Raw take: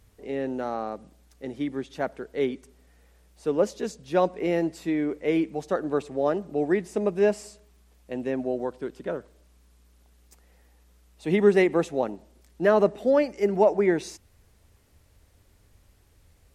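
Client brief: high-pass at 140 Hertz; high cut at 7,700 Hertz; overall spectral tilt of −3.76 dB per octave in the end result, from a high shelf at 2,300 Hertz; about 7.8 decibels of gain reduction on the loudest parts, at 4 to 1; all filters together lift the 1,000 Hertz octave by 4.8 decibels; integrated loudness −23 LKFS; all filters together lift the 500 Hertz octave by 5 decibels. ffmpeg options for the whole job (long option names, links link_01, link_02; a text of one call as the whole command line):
ffmpeg -i in.wav -af "highpass=140,lowpass=7700,equalizer=frequency=500:width_type=o:gain=5.5,equalizer=frequency=1000:width_type=o:gain=5.5,highshelf=frequency=2300:gain=-8,acompressor=threshold=-19dB:ratio=4,volume=3dB" out.wav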